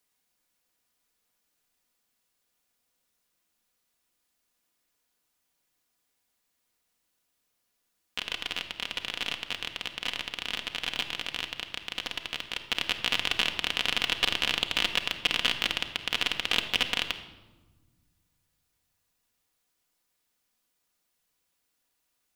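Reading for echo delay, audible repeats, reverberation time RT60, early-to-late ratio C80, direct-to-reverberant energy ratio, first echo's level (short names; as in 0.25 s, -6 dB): none, none, 1.2 s, 11.5 dB, 4.5 dB, none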